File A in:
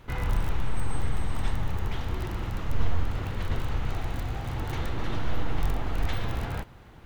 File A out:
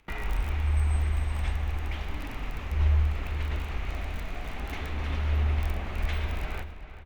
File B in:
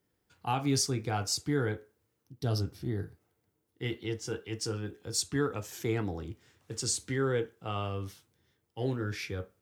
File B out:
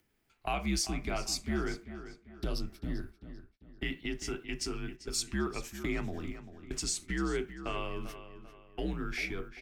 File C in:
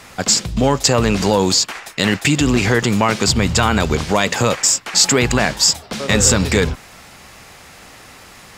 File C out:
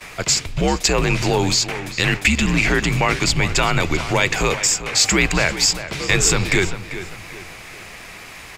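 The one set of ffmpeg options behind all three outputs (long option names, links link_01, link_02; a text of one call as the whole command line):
ffmpeg -i in.wav -filter_complex "[0:a]agate=range=-57dB:threshold=-42dB:ratio=16:detection=peak,equalizer=frequency=2400:width=2.6:gain=8.5,acompressor=mode=upward:threshold=-27dB:ratio=2.5,afreqshift=-75,asplit=2[link_01][link_02];[link_02]adelay=393,lowpass=frequency=4200:poles=1,volume=-12dB,asplit=2[link_03][link_04];[link_04]adelay=393,lowpass=frequency=4200:poles=1,volume=0.4,asplit=2[link_05][link_06];[link_06]adelay=393,lowpass=frequency=4200:poles=1,volume=0.4,asplit=2[link_07][link_08];[link_08]adelay=393,lowpass=frequency=4200:poles=1,volume=0.4[link_09];[link_03][link_05][link_07][link_09]amix=inputs=4:normalize=0[link_10];[link_01][link_10]amix=inputs=2:normalize=0,volume=-3.5dB" out.wav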